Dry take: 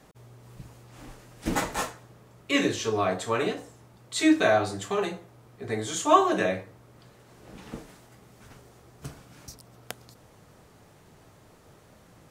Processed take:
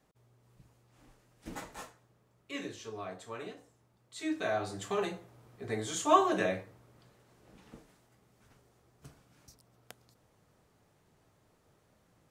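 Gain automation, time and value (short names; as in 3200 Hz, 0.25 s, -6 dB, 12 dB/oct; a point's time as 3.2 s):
4.19 s -16 dB
4.88 s -5 dB
6.56 s -5 dB
7.71 s -13.5 dB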